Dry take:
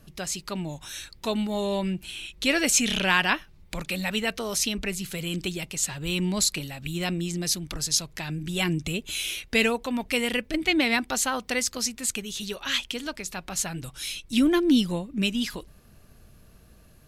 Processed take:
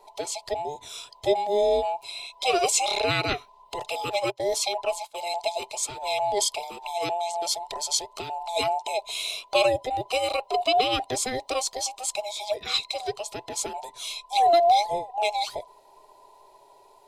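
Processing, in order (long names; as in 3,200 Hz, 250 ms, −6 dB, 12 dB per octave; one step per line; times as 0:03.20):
frequency inversion band by band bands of 1,000 Hz
0:04.31–0:05.21: noise gate −32 dBFS, range −20 dB
thirty-one-band graphic EQ 125 Hz +5 dB, 200 Hz −4 dB, 400 Hz +12 dB, 630 Hz +12 dB, 1,600 Hz −11 dB, 4,000 Hz +8 dB, 8,000 Hz +3 dB, 12,500 Hz −6 dB
level −3.5 dB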